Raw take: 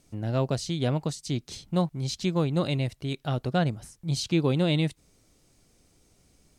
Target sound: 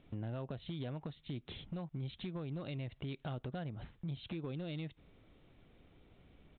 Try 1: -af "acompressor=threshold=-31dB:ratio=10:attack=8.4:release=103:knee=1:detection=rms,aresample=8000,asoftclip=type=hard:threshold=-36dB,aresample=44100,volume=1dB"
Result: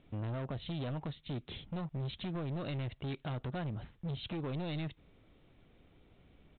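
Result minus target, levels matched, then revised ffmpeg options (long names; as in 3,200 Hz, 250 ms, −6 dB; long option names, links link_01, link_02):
downward compressor: peak gain reduction −7 dB
-af "acompressor=threshold=-39dB:ratio=10:attack=8.4:release=103:knee=1:detection=rms,aresample=8000,asoftclip=type=hard:threshold=-36dB,aresample=44100,volume=1dB"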